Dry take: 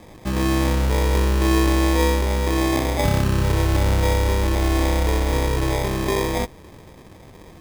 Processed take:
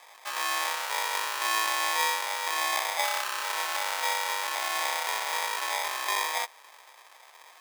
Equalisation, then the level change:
high-pass filter 830 Hz 24 dB per octave
0.0 dB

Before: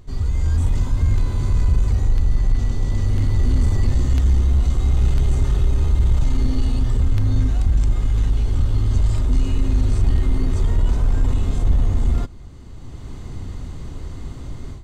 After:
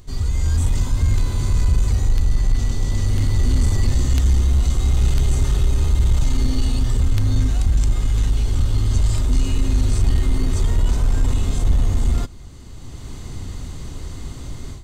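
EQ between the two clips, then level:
high-shelf EQ 3,100 Hz +10.5 dB
0.0 dB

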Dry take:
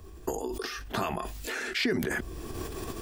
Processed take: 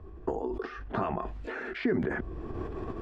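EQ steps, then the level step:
low-pass filter 1,400 Hz 12 dB per octave
+1.0 dB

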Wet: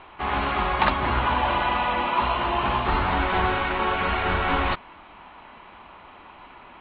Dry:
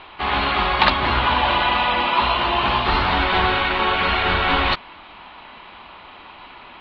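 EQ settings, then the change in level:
high-frequency loss of the air 420 metres
−2.0 dB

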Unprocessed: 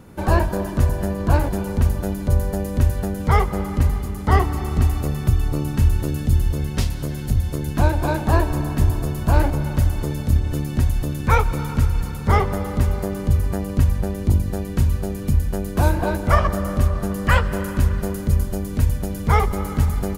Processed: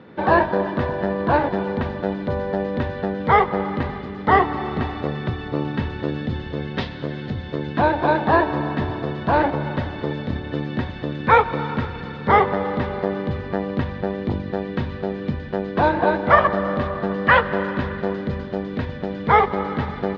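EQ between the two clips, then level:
dynamic equaliser 890 Hz, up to +5 dB, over −37 dBFS, Q 1.5
high-frequency loss of the air 200 metres
loudspeaker in its box 190–4,700 Hz, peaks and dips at 480 Hz +4 dB, 1,800 Hz +7 dB, 3,600 Hz +7 dB
+2.5 dB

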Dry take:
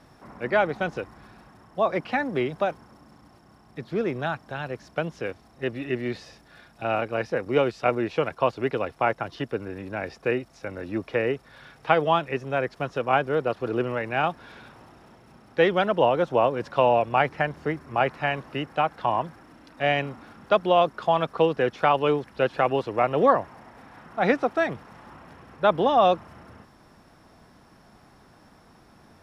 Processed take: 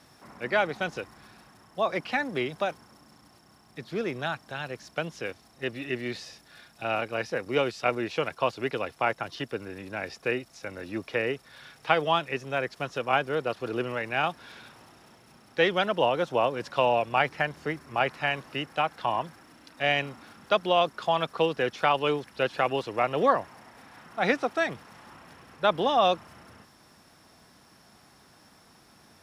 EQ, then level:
high-pass filter 110 Hz 6 dB per octave
low-shelf EQ 150 Hz +3.5 dB
high-shelf EQ 2,300 Hz +12 dB
−5.0 dB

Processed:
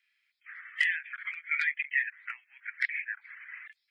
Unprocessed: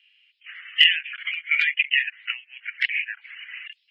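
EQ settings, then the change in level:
phaser with its sweep stopped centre 1,200 Hz, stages 4
0.0 dB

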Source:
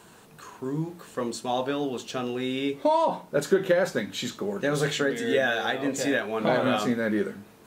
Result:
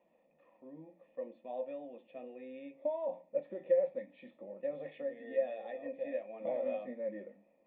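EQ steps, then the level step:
formant resonators in series e
low-shelf EQ 140 Hz −8 dB
phaser with its sweep stopped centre 420 Hz, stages 6
0.0 dB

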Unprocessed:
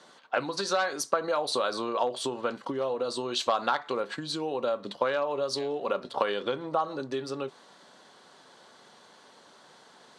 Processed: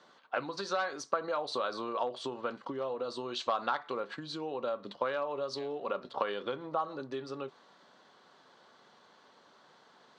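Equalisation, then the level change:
Bessel low-pass filter 4,900 Hz, order 4
parametric band 1,200 Hz +3 dB 0.43 octaves
−6.0 dB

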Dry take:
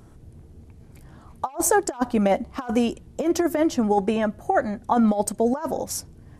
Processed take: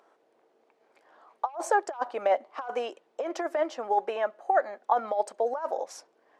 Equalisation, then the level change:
high-pass filter 510 Hz 24 dB per octave
head-to-tape spacing loss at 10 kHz 23 dB
0.0 dB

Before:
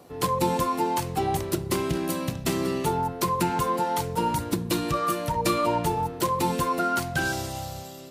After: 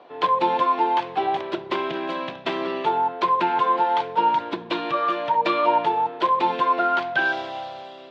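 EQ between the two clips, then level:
loudspeaker in its box 350–3,700 Hz, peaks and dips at 360 Hz +3 dB, 660 Hz +7 dB, 970 Hz +8 dB, 1,600 Hz +6 dB, 2,400 Hz +4 dB, 3,400 Hz +7 dB
0.0 dB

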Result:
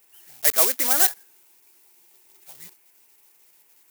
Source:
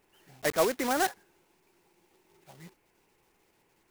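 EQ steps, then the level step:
spectral tilt +3.5 dB per octave
high-shelf EQ 8,200 Hz +8.5 dB
0.0 dB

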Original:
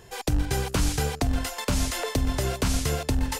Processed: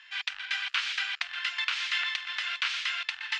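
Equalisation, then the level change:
inverse Chebyshev high-pass filter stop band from 430 Hz, stop band 60 dB
low-pass with resonance 3,100 Hz, resonance Q 1.7
high-frequency loss of the air 89 metres
+5.0 dB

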